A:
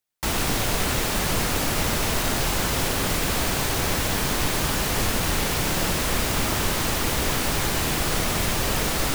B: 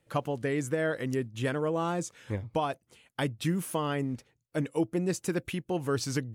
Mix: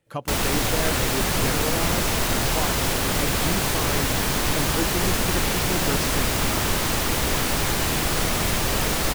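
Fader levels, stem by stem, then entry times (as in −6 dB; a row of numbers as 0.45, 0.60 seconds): +1.0, −0.5 decibels; 0.05, 0.00 seconds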